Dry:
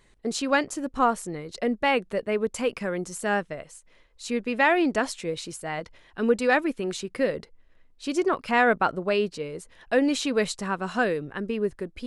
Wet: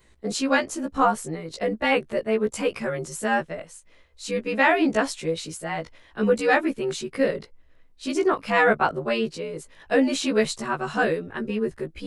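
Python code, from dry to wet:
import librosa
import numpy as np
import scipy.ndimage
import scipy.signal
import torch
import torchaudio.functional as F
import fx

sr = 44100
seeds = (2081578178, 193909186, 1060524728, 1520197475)

y = fx.frame_reverse(x, sr, frame_ms=37.0)
y = y * 10.0 ** (5.0 / 20.0)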